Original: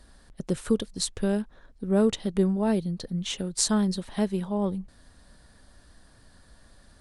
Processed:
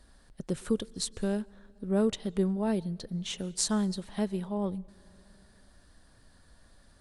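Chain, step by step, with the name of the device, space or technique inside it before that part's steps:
compressed reverb return (on a send at −14 dB: convolution reverb RT60 1.5 s, pre-delay 112 ms + downward compressor 10 to 1, threshold −35 dBFS, peak gain reduction 17 dB)
on the sum: level −4.5 dB

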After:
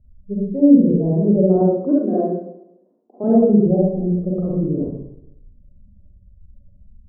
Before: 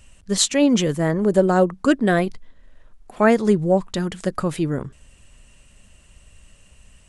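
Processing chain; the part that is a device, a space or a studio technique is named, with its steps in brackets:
0:01.56–0:03.24: high-pass filter 240 Hz 24 dB per octave
gate on every frequency bin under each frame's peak −20 dB strong
next room (low-pass filter 560 Hz 24 dB per octave; convolution reverb RT60 0.85 s, pre-delay 36 ms, DRR −7 dB)
level −4 dB

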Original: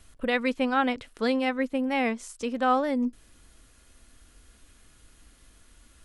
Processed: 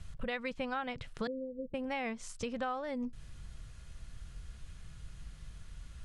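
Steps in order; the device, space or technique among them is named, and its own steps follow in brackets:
jukebox (low-pass filter 7,100 Hz 12 dB per octave; low shelf with overshoot 200 Hz +9 dB, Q 3; downward compressor 6 to 1, threshold −34 dBFS, peak gain reduction 14.5 dB)
0:01.27–0:01.74: Chebyshev low-pass filter 520 Hz, order 6

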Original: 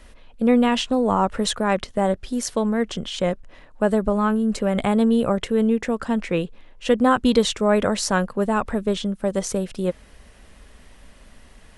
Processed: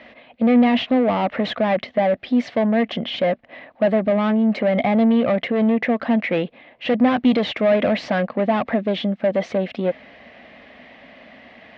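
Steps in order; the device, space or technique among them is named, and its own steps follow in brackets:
overdrive pedal into a guitar cabinet (mid-hump overdrive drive 25 dB, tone 1,400 Hz, clips at −4.5 dBFS; loudspeaker in its box 99–4,000 Hz, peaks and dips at 250 Hz +6 dB, 410 Hz −7 dB, 670 Hz +6 dB, 980 Hz −7 dB, 1,400 Hz −8 dB, 2,100 Hz +6 dB)
level −5 dB

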